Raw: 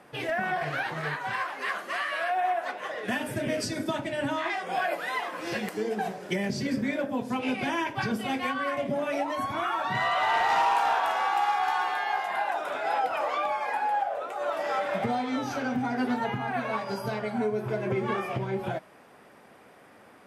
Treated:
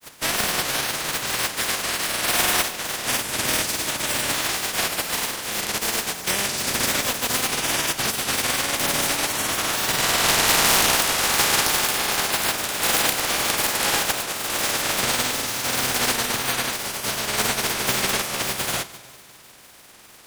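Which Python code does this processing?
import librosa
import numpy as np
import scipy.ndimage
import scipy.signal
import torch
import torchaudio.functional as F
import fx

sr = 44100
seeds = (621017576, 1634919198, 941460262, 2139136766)

y = fx.spec_flatten(x, sr, power=0.16)
y = fx.echo_heads(y, sr, ms=69, heads='second and third', feedback_pct=55, wet_db=-19.5)
y = fx.granulator(y, sr, seeds[0], grain_ms=100.0, per_s=20.0, spray_ms=100.0, spread_st=0)
y = y * librosa.db_to_amplitude(8.0)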